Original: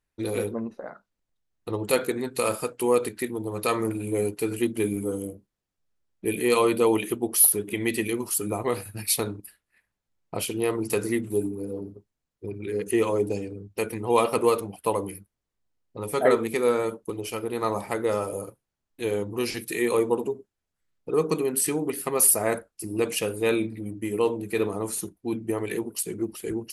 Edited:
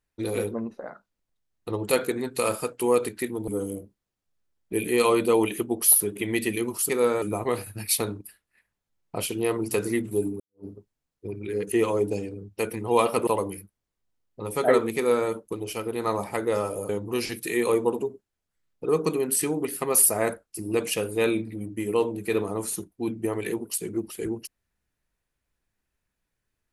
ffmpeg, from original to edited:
ffmpeg -i in.wav -filter_complex "[0:a]asplit=7[link_01][link_02][link_03][link_04][link_05][link_06][link_07];[link_01]atrim=end=3.482[link_08];[link_02]atrim=start=4.998:end=8.412[link_09];[link_03]atrim=start=16.528:end=16.862[link_10];[link_04]atrim=start=8.408:end=11.59,asetpts=PTS-STARTPTS,afade=type=out:start_time=3.178:duration=0.004:curve=hsin[link_11];[link_05]atrim=start=11.59:end=14.462,asetpts=PTS-STARTPTS,afade=type=in:duration=0.25:curve=exp[link_12];[link_06]atrim=start=14.838:end=18.462[link_13];[link_07]atrim=start=19.138[link_14];[link_08][link_09]acrossfade=duration=0.004:curve1=hsin:curve2=hsin[link_15];[link_15][link_10]acrossfade=duration=0.004:curve1=hsin:curve2=hsin[link_16];[link_11][link_12]concat=n=2:v=0:a=1[link_17];[link_16][link_17]acrossfade=duration=0.004:curve1=hsin:curve2=hsin[link_18];[link_18][link_13]acrossfade=duration=0.004:curve1=hsin:curve2=hsin[link_19];[link_19][link_14]acrossfade=duration=0.004:curve1=hsin:curve2=hsin" out.wav

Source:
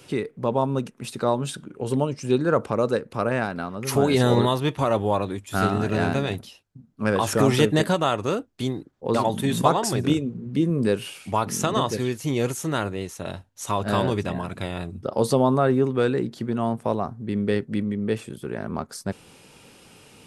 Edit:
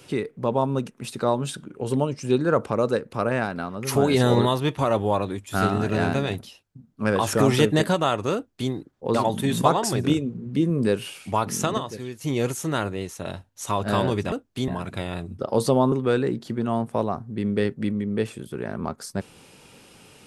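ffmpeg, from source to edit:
ffmpeg -i in.wav -filter_complex "[0:a]asplit=6[link_01][link_02][link_03][link_04][link_05][link_06];[link_01]atrim=end=11.78,asetpts=PTS-STARTPTS,afade=type=out:start_time=11.39:duration=0.39:curve=log:silence=0.375837[link_07];[link_02]atrim=start=11.78:end=12.21,asetpts=PTS-STARTPTS,volume=-8.5dB[link_08];[link_03]atrim=start=12.21:end=14.322,asetpts=PTS-STARTPTS,afade=type=in:duration=0.39:curve=log:silence=0.375837[link_09];[link_04]atrim=start=8.348:end=8.712[link_10];[link_05]atrim=start=14.318:end=15.562[link_11];[link_06]atrim=start=15.828[link_12];[link_07][link_08][link_09]concat=n=3:v=0:a=1[link_13];[link_13][link_10]acrossfade=duration=0.004:curve1=hsin:curve2=hsin[link_14];[link_14][link_11]acrossfade=duration=0.004:curve1=hsin:curve2=hsin[link_15];[link_15][link_12]acrossfade=duration=0.004:curve1=hsin:curve2=hsin" out.wav

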